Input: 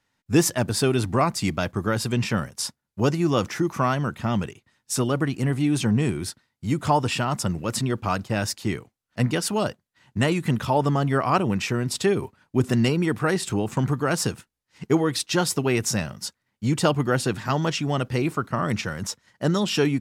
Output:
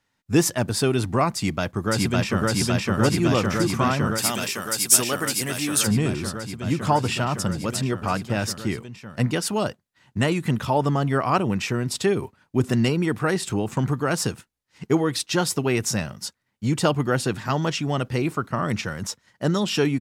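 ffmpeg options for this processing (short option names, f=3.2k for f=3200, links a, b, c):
-filter_complex "[0:a]asplit=2[a][b];[b]afade=t=in:st=1.35:d=0.01,afade=t=out:st=2.47:d=0.01,aecho=0:1:560|1120|1680|2240|2800|3360|3920|4480|5040|5600|6160|6720:1|0.85|0.7225|0.614125|0.522006|0.443705|0.37715|0.320577|0.272491|0.231617|0.196874|0.167343[c];[a][c]amix=inputs=2:normalize=0,asplit=3[d][e][f];[d]afade=t=out:st=4.17:d=0.02[g];[e]aemphasis=mode=production:type=riaa,afade=t=in:st=4.17:d=0.02,afade=t=out:st=5.86:d=0.02[h];[f]afade=t=in:st=5.86:d=0.02[i];[g][h][i]amix=inputs=3:normalize=0"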